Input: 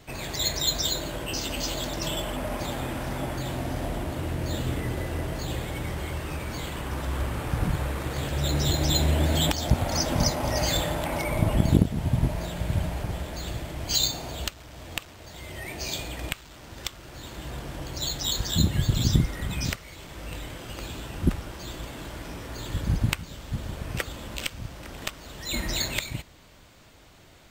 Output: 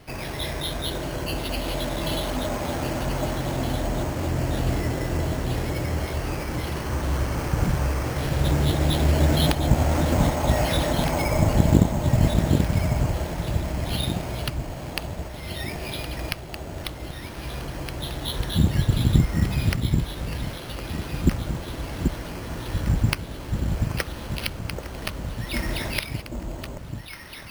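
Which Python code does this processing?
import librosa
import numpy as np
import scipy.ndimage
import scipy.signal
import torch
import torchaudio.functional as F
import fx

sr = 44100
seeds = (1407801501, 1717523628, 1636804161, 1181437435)

y = fx.echo_alternate(x, sr, ms=783, hz=950.0, feedback_pct=63, wet_db=-4.0)
y = np.repeat(scipy.signal.resample_poly(y, 1, 6), 6)[:len(y)]
y = y * 10.0 ** (3.0 / 20.0)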